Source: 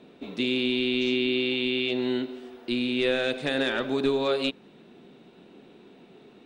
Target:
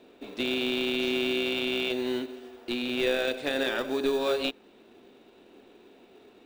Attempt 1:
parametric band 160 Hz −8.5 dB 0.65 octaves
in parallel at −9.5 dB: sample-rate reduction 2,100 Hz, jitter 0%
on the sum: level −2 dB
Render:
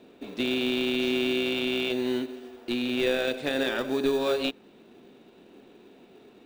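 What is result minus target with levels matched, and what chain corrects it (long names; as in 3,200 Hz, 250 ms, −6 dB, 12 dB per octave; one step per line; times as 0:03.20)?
125 Hz band +3.5 dB
parametric band 160 Hz −20.5 dB 0.65 octaves
in parallel at −9.5 dB: sample-rate reduction 2,100 Hz, jitter 0%
on the sum: level −2 dB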